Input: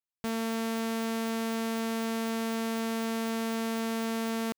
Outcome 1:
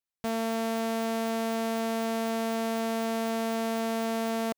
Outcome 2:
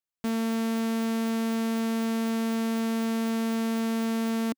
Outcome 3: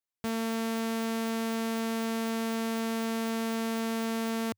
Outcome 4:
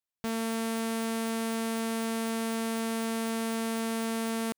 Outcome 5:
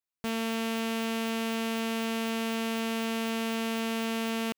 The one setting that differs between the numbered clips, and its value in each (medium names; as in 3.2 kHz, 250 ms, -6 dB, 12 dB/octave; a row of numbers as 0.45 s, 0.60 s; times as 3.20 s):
dynamic bell, frequency: 670 Hz, 260 Hz, 100 Hz, 9.4 kHz, 2.8 kHz